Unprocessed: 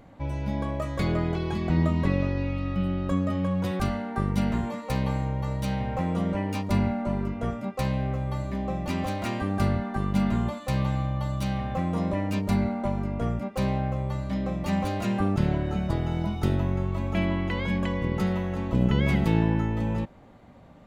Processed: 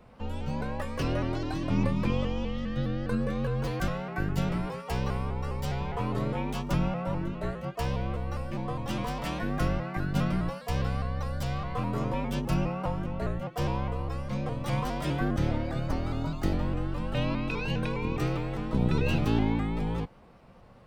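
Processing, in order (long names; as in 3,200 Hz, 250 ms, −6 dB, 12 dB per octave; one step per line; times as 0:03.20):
formants moved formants +4 semitones
frequency shifter −54 Hz
pitch modulation by a square or saw wave saw up 4.9 Hz, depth 100 cents
level −3 dB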